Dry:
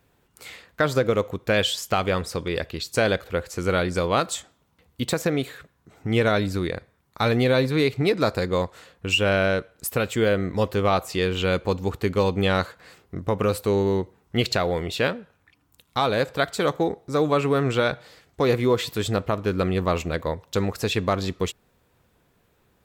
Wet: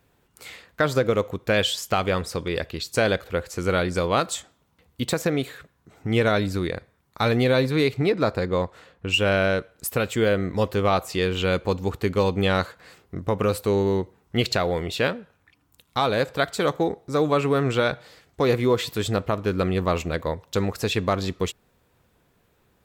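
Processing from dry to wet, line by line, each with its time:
0:08.06–0:09.14: high-shelf EQ 4,500 Hz −10.5 dB

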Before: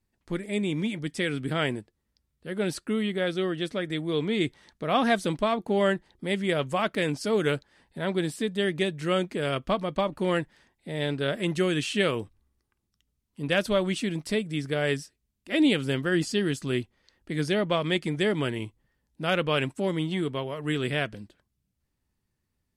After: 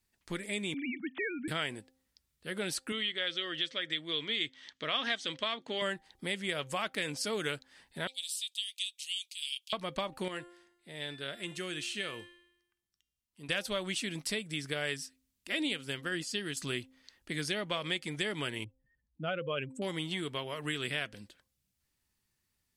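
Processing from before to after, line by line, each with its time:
0:00.74–0:01.48: three sine waves on the formant tracks
0:02.92–0:05.82: loudspeaker in its box 130–6,800 Hz, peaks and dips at 190 Hz −10 dB, 390 Hz −4 dB, 790 Hz −7 dB, 1,900 Hz +4 dB, 3,200 Hz +9 dB
0:08.07–0:09.73: Butterworth high-pass 2,800 Hz 48 dB per octave
0:10.28–0:13.49: tuned comb filter 350 Hz, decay 0.85 s, mix 70%
0:15.60–0:16.57: expander for the loud parts, over −33 dBFS
0:18.64–0:19.82: expanding power law on the bin magnitudes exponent 1.9
whole clip: tilt shelving filter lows −6.5 dB, about 1,200 Hz; hum removal 261.3 Hz, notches 3; downward compressor 2.5 to 1, threshold −34 dBFS

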